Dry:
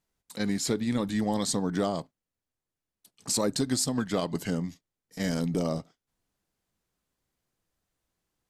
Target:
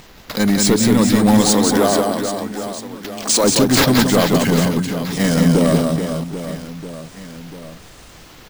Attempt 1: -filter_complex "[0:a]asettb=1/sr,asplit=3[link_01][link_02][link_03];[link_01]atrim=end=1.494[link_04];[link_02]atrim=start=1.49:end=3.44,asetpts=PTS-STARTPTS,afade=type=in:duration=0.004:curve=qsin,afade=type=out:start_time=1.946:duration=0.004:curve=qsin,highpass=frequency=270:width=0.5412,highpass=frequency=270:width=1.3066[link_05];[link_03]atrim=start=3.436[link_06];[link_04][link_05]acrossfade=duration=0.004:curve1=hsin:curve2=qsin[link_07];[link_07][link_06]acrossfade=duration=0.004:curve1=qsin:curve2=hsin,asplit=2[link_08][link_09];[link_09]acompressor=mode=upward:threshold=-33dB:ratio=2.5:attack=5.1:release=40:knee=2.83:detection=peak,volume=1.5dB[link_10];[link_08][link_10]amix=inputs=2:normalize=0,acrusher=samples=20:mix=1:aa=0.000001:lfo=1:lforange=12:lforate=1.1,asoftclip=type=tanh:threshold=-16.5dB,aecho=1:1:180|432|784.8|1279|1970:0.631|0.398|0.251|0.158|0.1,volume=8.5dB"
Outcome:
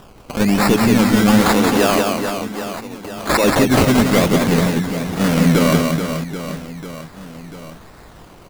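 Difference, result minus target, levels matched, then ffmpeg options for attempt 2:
sample-and-hold swept by an LFO: distortion +6 dB
-filter_complex "[0:a]asettb=1/sr,asplit=3[link_01][link_02][link_03];[link_01]atrim=end=1.494[link_04];[link_02]atrim=start=1.49:end=3.44,asetpts=PTS-STARTPTS,afade=type=in:duration=0.004:curve=qsin,afade=type=out:start_time=1.946:duration=0.004:curve=qsin,highpass=frequency=270:width=0.5412,highpass=frequency=270:width=1.3066[link_05];[link_03]atrim=start=3.436[link_06];[link_04][link_05]acrossfade=duration=0.004:curve1=hsin:curve2=qsin[link_07];[link_07][link_06]acrossfade=duration=0.004:curve1=qsin:curve2=hsin,asplit=2[link_08][link_09];[link_09]acompressor=mode=upward:threshold=-33dB:ratio=2.5:attack=5.1:release=40:knee=2.83:detection=peak,volume=1.5dB[link_10];[link_08][link_10]amix=inputs=2:normalize=0,acrusher=samples=4:mix=1:aa=0.000001:lfo=1:lforange=2.4:lforate=1.1,asoftclip=type=tanh:threshold=-16.5dB,aecho=1:1:180|432|784.8|1279|1970:0.631|0.398|0.251|0.158|0.1,volume=8.5dB"

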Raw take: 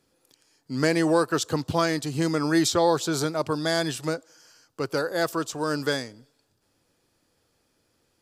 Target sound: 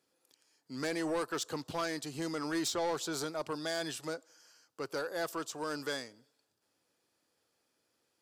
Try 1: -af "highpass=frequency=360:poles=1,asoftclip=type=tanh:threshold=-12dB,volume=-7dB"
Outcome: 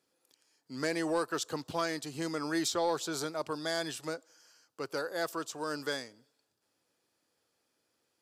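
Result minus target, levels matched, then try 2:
soft clipping: distortion −11 dB
-af "highpass=frequency=360:poles=1,asoftclip=type=tanh:threshold=-20.5dB,volume=-7dB"

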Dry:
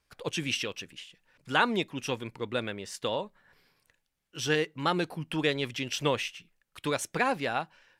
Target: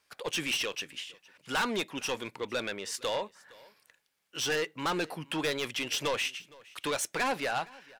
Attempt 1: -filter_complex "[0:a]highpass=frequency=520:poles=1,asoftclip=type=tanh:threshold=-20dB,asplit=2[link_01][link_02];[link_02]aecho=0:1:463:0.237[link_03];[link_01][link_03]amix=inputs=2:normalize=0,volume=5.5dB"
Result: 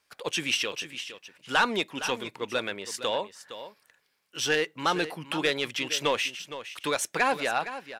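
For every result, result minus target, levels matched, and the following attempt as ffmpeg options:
echo-to-direct +11 dB; soft clipping: distortion −8 dB
-filter_complex "[0:a]highpass=frequency=520:poles=1,asoftclip=type=tanh:threshold=-20dB,asplit=2[link_01][link_02];[link_02]aecho=0:1:463:0.0668[link_03];[link_01][link_03]amix=inputs=2:normalize=0,volume=5.5dB"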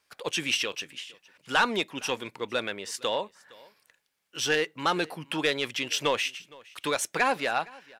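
soft clipping: distortion −8 dB
-filter_complex "[0:a]highpass=frequency=520:poles=1,asoftclip=type=tanh:threshold=-31dB,asplit=2[link_01][link_02];[link_02]aecho=0:1:463:0.0668[link_03];[link_01][link_03]amix=inputs=2:normalize=0,volume=5.5dB"

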